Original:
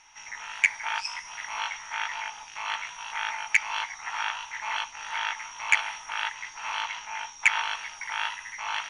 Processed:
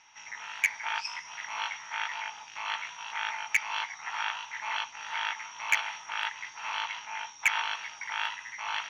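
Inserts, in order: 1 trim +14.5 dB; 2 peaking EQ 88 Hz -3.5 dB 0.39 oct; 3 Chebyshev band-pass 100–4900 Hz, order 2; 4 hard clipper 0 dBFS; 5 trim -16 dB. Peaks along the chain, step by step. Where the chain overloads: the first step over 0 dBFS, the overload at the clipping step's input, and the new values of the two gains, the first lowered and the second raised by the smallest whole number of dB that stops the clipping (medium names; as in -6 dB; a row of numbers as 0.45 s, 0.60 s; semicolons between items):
+8.0 dBFS, +8.0 dBFS, +8.0 dBFS, 0.0 dBFS, -16.0 dBFS; step 1, 8.0 dB; step 1 +6.5 dB, step 5 -8 dB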